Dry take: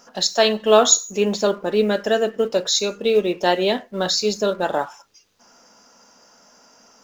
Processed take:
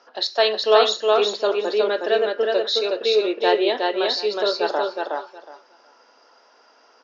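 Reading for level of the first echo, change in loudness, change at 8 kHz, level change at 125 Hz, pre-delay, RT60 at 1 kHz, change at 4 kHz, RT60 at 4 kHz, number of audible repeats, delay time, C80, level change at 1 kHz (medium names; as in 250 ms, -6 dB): -3.0 dB, -1.5 dB, no reading, under -20 dB, no reverb, no reverb, 0.0 dB, no reverb, 3, 366 ms, no reverb, +0.5 dB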